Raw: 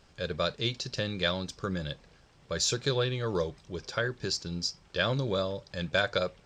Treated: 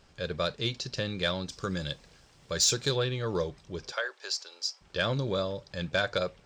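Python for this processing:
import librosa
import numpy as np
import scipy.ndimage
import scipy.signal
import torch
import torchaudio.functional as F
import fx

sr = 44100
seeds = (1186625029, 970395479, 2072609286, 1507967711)

y = fx.high_shelf(x, sr, hz=fx.line((1.51, 3600.0), (2.95, 5600.0)), db=10.5, at=(1.51, 2.95), fade=0.02)
y = fx.cheby2_highpass(y, sr, hz=160.0, order=4, stop_db=60, at=(3.92, 4.81))
y = 10.0 ** (-14.5 / 20.0) * np.tanh(y / 10.0 ** (-14.5 / 20.0))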